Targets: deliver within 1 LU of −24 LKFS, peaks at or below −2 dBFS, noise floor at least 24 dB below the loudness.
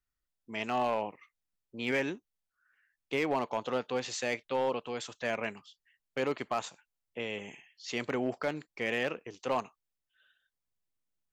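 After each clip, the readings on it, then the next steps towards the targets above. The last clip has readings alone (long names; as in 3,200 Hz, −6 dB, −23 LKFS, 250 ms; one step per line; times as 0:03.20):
share of clipped samples 0.4%; peaks flattened at −22.5 dBFS; integrated loudness −34.5 LKFS; sample peak −22.5 dBFS; target loudness −24.0 LKFS
→ clipped peaks rebuilt −22.5 dBFS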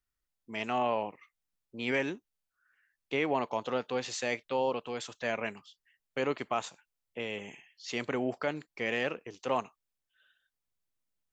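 share of clipped samples 0.0%; integrated loudness −34.0 LKFS; sample peak −17.5 dBFS; target loudness −24.0 LKFS
→ level +10 dB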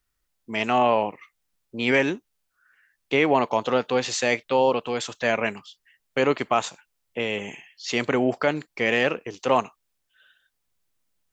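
integrated loudness −24.0 LKFS; sample peak −7.5 dBFS; background noise floor −76 dBFS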